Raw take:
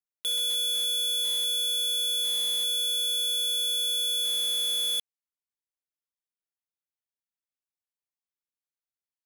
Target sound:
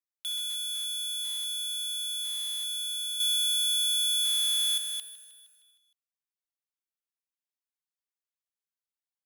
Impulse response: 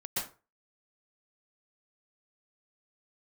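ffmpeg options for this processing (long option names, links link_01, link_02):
-filter_complex "[0:a]highpass=frequency=840:width=0.5412,highpass=frequency=840:width=1.3066,asettb=1/sr,asplit=3[link_01][link_02][link_03];[link_01]atrim=end=3.204[link_04];[link_02]atrim=start=3.2:end=4.78,asetpts=PTS-STARTPTS,afade=type=in:duration=0.004:curve=qsin,afade=type=out:start_time=1.576:duration=0.004:curve=qsin,acontrast=74[link_05];[link_03]atrim=start=4.776[link_06];[link_04][link_05]acrossfade=duration=0.004:curve1=hsin:curve2=qsin[link_07];[link_07][link_06]acrossfade=duration=0.004:curve1=qsin:curve2=hsin,aecho=1:1:155|310|465|620|775|930:0.2|0.114|0.0648|0.037|0.0211|0.012,volume=-5dB"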